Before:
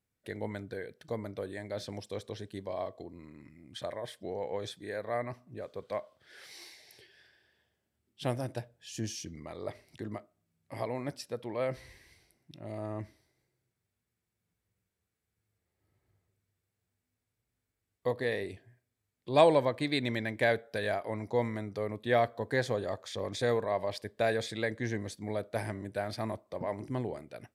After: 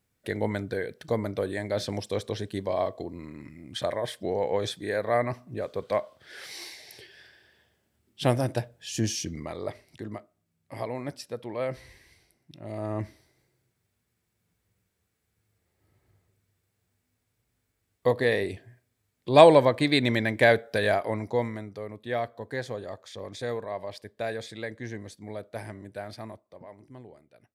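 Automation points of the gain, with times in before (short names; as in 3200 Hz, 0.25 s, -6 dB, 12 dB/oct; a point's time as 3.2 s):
9.39 s +9 dB
9.86 s +2 dB
12.58 s +2 dB
13.03 s +8 dB
21.01 s +8 dB
21.82 s -3 dB
26.11 s -3 dB
26.72 s -12 dB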